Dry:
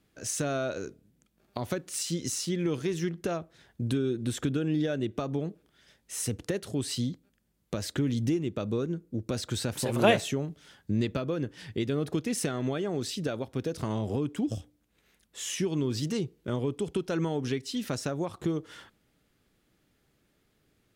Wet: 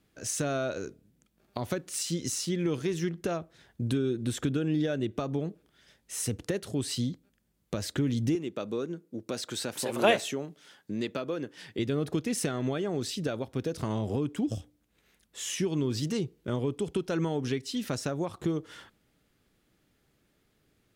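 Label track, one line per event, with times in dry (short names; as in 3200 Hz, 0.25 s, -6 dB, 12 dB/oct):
8.350000	11.790000	Bessel high-pass 290 Hz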